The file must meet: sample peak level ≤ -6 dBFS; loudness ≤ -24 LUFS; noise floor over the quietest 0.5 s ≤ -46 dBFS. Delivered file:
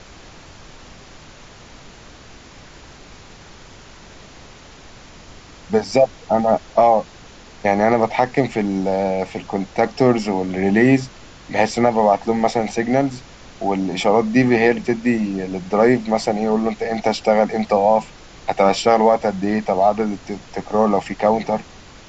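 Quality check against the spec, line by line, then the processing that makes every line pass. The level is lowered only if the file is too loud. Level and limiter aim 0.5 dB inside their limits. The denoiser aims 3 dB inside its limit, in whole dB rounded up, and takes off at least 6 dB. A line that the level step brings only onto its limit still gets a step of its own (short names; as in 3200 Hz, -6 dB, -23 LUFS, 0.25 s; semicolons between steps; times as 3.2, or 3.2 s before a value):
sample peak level -3.0 dBFS: fail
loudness -18.5 LUFS: fail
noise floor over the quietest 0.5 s -42 dBFS: fail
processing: gain -6 dB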